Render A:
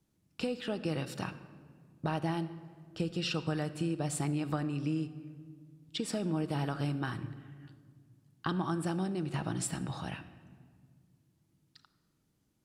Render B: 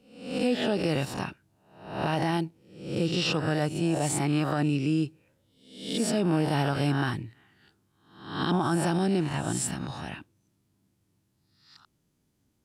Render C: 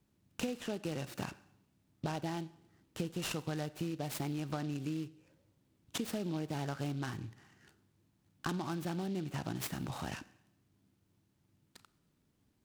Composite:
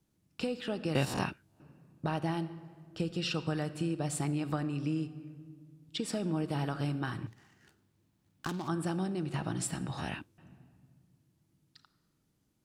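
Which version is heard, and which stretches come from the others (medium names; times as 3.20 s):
A
0.95–1.60 s: from B
7.27–8.68 s: from C
9.98–10.38 s: from B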